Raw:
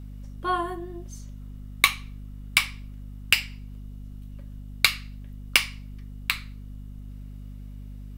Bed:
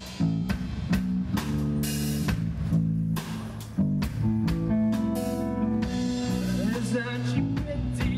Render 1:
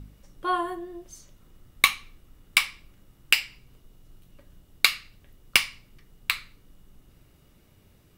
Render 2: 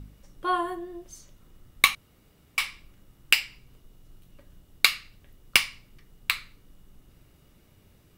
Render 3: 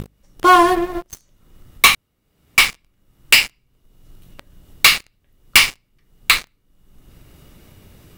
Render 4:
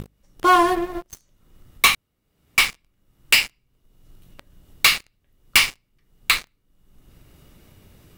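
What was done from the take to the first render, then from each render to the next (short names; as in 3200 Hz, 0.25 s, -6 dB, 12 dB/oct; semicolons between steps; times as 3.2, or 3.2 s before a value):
de-hum 50 Hz, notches 5
1.95–2.58 room tone
sample leveller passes 5; upward compressor, threshold -27 dBFS
gain -4.5 dB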